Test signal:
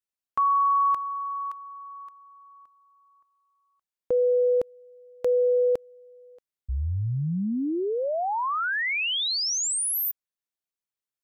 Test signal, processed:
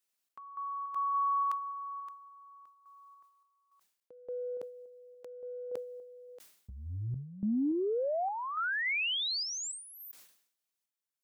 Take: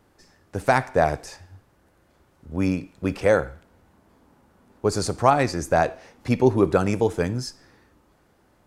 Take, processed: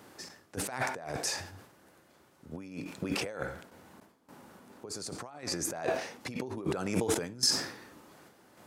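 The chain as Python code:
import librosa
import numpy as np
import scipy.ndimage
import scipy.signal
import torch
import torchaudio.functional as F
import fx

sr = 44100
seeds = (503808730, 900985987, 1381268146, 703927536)

y = fx.high_shelf(x, sr, hz=2300.0, db=5.0)
y = fx.over_compress(y, sr, threshold_db=-31.0, ratio=-1.0)
y = scipy.signal.sosfilt(scipy.signal.butter(2, 150.0, 'highpass', fs=sr, output='sos'), y)
y = fx.tremolo_random(y, sr, seeds[0], hz=3.5, depth_pct=90)
y = fx.sustainer(y, sr, db_per_s=90.0)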